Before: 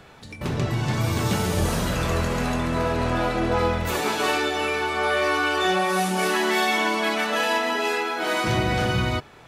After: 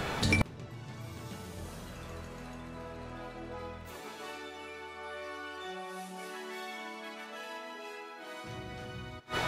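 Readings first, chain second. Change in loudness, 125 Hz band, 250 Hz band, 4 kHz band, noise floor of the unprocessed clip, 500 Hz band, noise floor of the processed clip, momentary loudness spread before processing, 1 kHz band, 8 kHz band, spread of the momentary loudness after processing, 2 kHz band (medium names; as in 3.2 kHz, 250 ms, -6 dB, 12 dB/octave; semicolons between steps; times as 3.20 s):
-16.5 dB, -14.5 dB, -15.5 dB, -15.0 dB, -45 dBFS, -18.5 dB, -47 dBFS, 4 LU, -18.0 dB, -15.5 dB, 8 LU, -15.5 dB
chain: thinning echo 154 ms, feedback 52%, high-pass 400 Hz, level -15 dB; inverted gate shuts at -26 dBFS, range -34 dB; trim +13.5 dB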